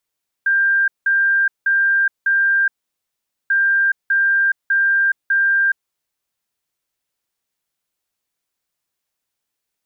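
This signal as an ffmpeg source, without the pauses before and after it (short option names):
-f lavfi -i "aevalsrc='0.237*sin(2*PI*1590*t)*clip(min(mod(mod(t,3.04),0.6),0.42-mod(mod(t,3.04),0.6))/0.005,0,1)*lt(mod(t,3.04),2.4)':d=6.08:s=44100"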